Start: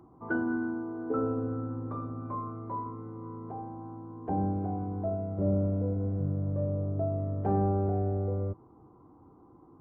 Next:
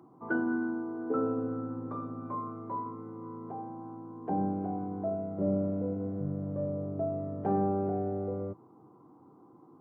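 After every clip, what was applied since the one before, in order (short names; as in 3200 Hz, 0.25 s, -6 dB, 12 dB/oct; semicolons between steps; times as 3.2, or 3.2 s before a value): HPF 130 Hz 24 dB/oct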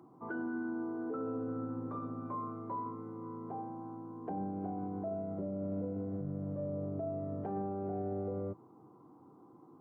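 limiter -29 dBFS, peak gain reduction 11 dB; gain -1.5 dB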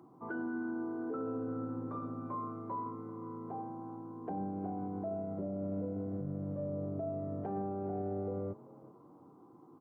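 frequency-shifting echo 0.387 s, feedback 32%, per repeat +38 Hz, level -20.5 dB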